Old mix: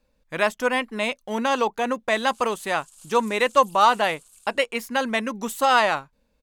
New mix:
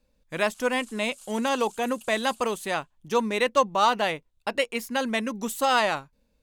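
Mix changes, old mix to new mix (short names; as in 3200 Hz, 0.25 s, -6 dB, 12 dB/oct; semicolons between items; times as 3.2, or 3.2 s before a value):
speech: add bell 1200 Hz -5 dB 2.3 oct; background: entry -1.80 s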